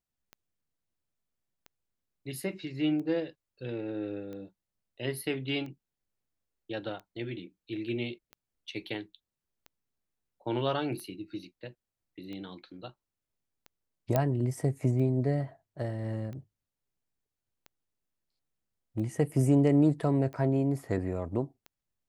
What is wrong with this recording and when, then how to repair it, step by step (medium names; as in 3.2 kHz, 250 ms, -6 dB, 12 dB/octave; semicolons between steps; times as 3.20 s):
tick 45 rpm -31 dBFS
14.16 s: pop -13 dBFS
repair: de-click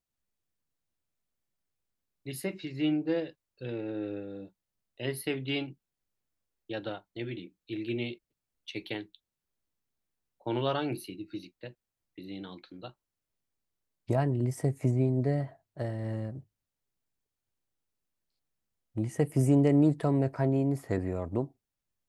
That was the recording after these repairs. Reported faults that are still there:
nothing left